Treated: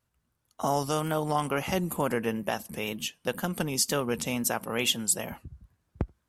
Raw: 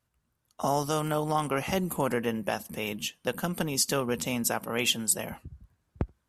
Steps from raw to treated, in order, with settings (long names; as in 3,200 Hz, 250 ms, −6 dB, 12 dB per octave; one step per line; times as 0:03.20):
tape wow and flutter 54 cents